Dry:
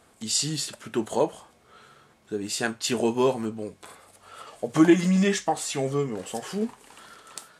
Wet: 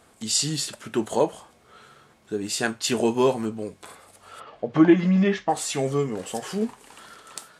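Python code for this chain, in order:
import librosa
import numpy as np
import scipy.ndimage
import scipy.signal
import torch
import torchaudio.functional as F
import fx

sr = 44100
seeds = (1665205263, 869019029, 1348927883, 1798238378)

y = fx.air_absorb(x, sr, metres=270.0, at=(4.39, 5.48), fade=0.02)
y = F.gain(torch.from_numpy(y), 2.0).numpy()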